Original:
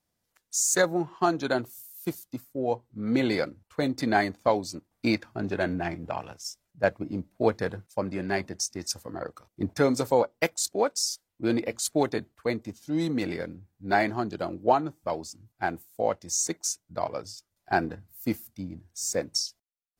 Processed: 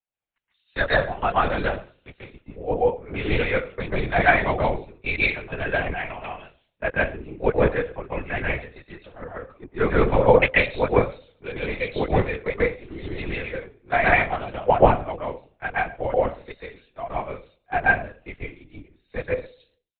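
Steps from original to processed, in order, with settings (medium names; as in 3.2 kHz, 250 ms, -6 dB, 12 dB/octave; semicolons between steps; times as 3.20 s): high-pass 340 Hz 24 dB/octave; peaking EQ 2.7 kHz +11 dB 0.59 oct; band-stop 2.5 kHz, Q 22; comb 4.3 ms, depth 72%; reverberation RT60 0.45 s, pre-delay 126 ms, DRR -4 dB; LPC vocoder at 8 kHz whisper; three bands expanded up and down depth 40%; trim -7.5 dB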